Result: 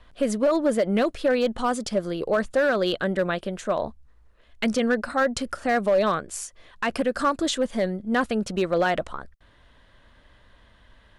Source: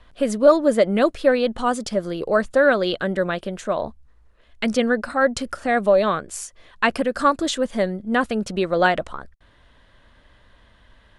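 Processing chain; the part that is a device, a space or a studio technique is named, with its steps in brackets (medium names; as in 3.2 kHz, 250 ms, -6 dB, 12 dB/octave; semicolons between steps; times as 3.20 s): limiter into clipper (peak limiter -11 dBFS, peak gain reduction 8 dB; hard clipper -13.5 dBFS, distortion -23 dB); trim -1.5 dB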